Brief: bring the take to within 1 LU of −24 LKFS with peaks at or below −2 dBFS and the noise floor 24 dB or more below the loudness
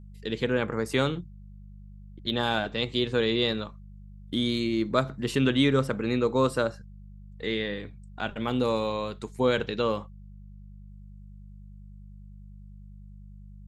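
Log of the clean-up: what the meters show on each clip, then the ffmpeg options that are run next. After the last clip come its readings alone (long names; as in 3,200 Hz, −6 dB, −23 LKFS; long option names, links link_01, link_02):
mains hum 50 Hz; hum harmonics up to 200 Hz; level of the hum −43 dBFS; integrated loudness −27.5 LKFS; sample peak −10.0 dBFS; target loudness −24.0 LKFS
→ -af "bandreject=frequency=50:width_type=h:width=4,bandreject=frequency=100:width_type=h:width=4,bandreject=frequency=150:width_type=h:width=4,bandreject=frequency=200:width_type=h:width=4"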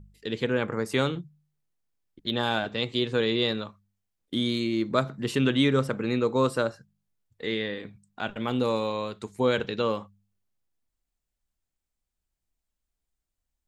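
mains hum none found; integrated loudness −27.5 LKFS; sample peak −9.5 dBFS; target loudness −24.0 LKFS
→ -af "volume=3.5dB"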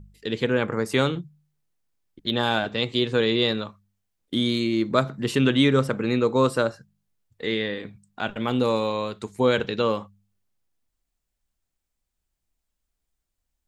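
integrated loudness −24.0 LKFS; sample peak −6.0 dBFS; background noise floor −81 dBFS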